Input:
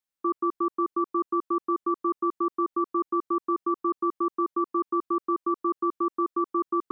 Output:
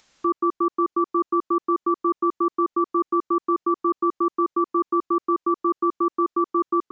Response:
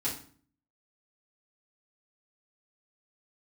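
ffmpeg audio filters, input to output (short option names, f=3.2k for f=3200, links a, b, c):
-af "aresample=16000,aresample=44100,acompressor=mode=upward:threshold=-45dB:ratio=2.5,volume=4.5dB"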